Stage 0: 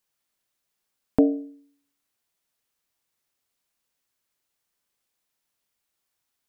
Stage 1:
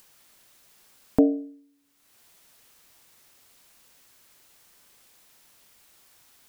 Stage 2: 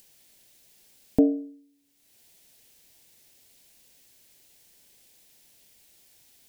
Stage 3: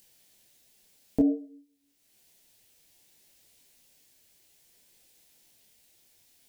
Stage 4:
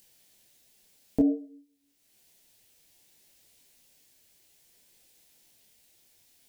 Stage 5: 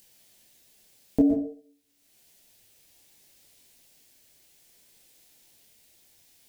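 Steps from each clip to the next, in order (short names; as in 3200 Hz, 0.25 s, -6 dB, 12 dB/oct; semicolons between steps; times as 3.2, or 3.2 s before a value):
upward compressor, threshold -40 dBFS
bell 1200 Hz -14.5 dB 0.88 oct
detuned doubles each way 20 cents
nothing audible
reverb RT60 0.35 s, pre-delay 0.108 s, DRR 6.5 dB; gain +2.5 dB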